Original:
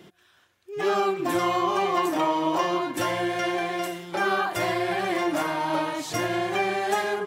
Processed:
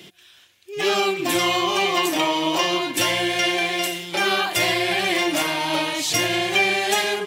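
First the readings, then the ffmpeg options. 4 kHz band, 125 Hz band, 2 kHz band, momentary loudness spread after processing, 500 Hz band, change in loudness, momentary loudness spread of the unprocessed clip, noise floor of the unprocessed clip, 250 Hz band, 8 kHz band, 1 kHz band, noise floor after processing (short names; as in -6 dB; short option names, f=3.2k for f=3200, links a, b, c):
+13.5 dB, +2.5 dB, +8.0 dB, 4 LU, +2.0 dB, +5.0 dB, 4 LU, -61 dBFS, +2.5 dB, +12.0 dB, +1.0 dB, -52 dBFS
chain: -af "highpass=54,highshelf=f=1.9k:t=q:w=1.5:g=9,volume=2.5dB"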